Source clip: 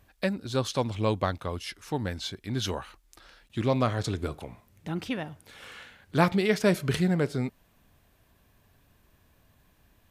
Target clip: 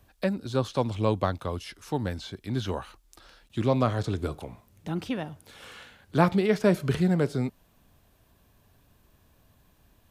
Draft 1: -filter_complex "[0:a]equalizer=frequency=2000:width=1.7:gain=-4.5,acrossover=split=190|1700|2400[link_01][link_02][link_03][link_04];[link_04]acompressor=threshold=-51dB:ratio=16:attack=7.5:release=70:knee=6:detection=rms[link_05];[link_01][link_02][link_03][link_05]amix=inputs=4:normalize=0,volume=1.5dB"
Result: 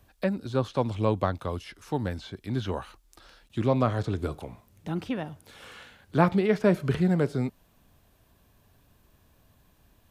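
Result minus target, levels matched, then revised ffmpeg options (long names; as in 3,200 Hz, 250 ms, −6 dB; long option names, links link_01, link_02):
downward compressor: peak gain reduction +7 dB
-filter_complex "[0:a]equalizer=frequency=2000:width=1.7:gain=-4.5,acrossover=split=190|1700|2400[link_01][link_02][link_03][link_04];[link_04]acompressor=threshold=-43.5dB:ratio=16:attack=7.5:release=70:knee=6:detection=rms[link_05];[link_01][link_02][link_03][link_05]amix=inputs=4:normalize=0,volume=1.5dB"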